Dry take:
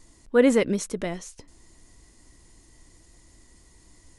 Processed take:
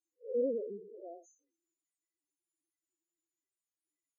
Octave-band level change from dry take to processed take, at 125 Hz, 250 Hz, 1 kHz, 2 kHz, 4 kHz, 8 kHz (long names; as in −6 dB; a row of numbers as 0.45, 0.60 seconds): below −25 dB, −20.0 dB, −21.0 dB, below −40 dB, below −40 dB, −32.5 dB